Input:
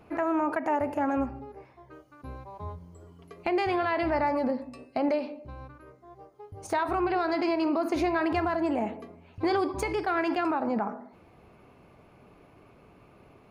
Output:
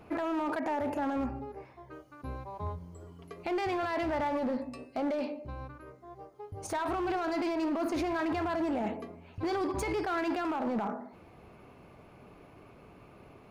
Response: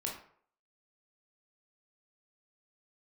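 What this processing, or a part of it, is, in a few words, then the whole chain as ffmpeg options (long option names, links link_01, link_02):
limiter into clipper: -af "alimiter=level_in=1.5dB:limit=-24dB:level=0:latency=1:release=15,volume=-1.5dB,asoftclip=type=hard:threshold=-28.5dB,volume=1.5dB"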